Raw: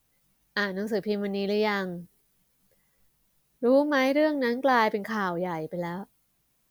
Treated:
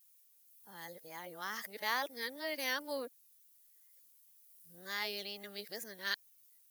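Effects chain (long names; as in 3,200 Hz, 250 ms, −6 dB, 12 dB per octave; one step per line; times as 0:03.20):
played backwards from end to start
pitch vibrato 2.1 Hz 48 cents
first-order pre-emphasis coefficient 0.97
level +3 dB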